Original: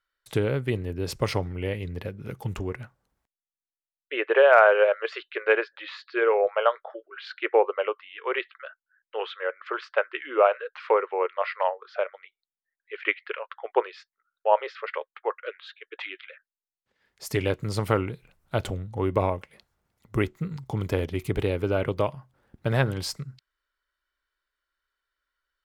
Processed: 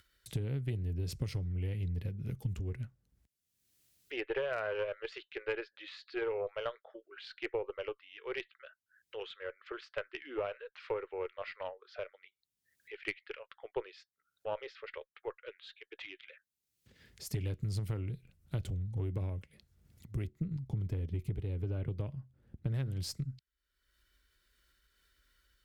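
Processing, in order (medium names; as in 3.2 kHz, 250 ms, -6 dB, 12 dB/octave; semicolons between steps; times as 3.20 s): amplifier tone stack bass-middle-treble 10-0-1; compression 16:1, threshold -44 dBFS, peak gain reduction 11.5 dB; 20.27–22.74 s: treble shelf 2.8 kHz -9 dB; upward compressor, threshold -58 dBFS; high-pass 65 Hz 12 dB/octave; Chebyshev shaper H 4 -21 dB, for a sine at -33.5 dBFS; trim +13.5 dB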